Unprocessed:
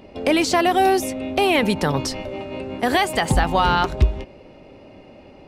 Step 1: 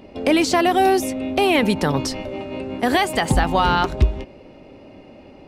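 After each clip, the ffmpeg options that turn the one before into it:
-af "equalizer=f=270:t=o:w=0.77:g=3"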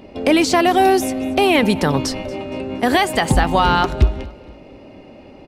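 -af "aecho=1:1:233|466|699:0.0841|0.0311|0.0115,volume=2.5dB"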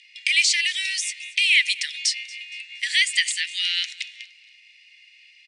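-af "asuperpass=centerf=4500:order=20:qfactor=0.59,volume=4dB"

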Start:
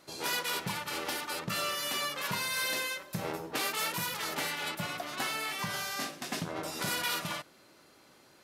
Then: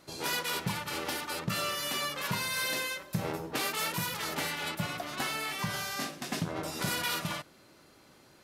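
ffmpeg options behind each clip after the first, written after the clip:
-af "lowshelf=f=170:g=9"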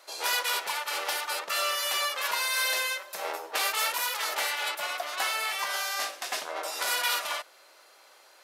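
-af "highpass=f=540:w=0.5412,highpass=f=540:w=1.3066,volume=5dB"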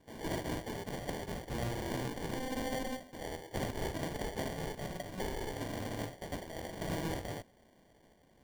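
-af "acrusher=samples=34:mix=1:aa=0.000001,volume=-8dB"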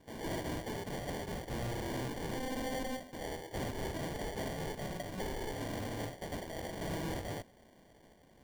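-af "asoftclip=type=tanh:threshold=-36dB,volume=3dB"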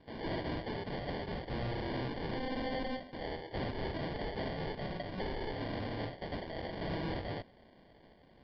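-af "aresample=11025,aresample=44100,volume=1dB"

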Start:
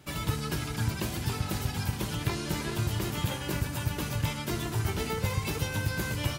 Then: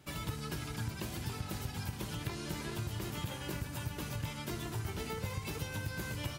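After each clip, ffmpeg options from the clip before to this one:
-af "acompressor=threshold=-32dB:ratio=2,volume=-5dB"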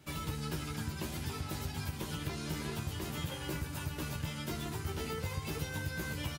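-filter_complex "[0:a]acrossover=split=930[a][b];[b]asoftclip=type=hard:threshold=-39dB[c];[a][c]amix=inputs=2:normalize=0,asplit=2[d][e];[e]adelay=13,volume=-5dB[f];[d][f]amix=inputs=2:normalize=0"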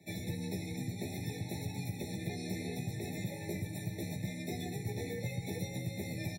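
-af "afreqshift=29,afftfilt=real='re*eq(mod(floor(b*sr/1024/870),2),0)':imag='im*eq(mod(floor(b*sr/1024/870),2),0)':win_size=1024:overlap=0.75"

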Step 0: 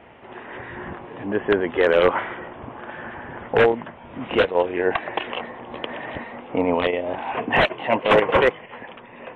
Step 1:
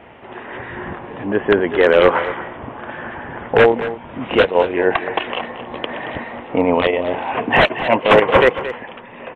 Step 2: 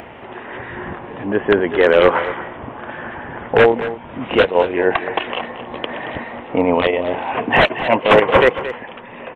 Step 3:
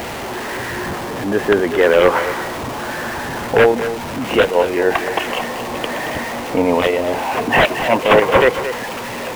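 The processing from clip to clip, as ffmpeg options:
-af "aecho=1:1:226:0.224,volume=5dB"
-af "acompressor=mode=upward:threshold=-30dB:ratio=2.5"
-af "aeval=exprs='val(0)+0.5*0.0794*sgn(val(0))':c=same,volume=-1dB"

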